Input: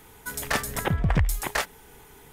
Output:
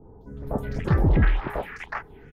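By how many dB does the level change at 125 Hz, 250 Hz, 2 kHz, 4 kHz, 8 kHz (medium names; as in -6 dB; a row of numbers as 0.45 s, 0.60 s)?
+3.5 dB, +4.5 dB, -3.5 dB, -12.0 dB, under -25 dB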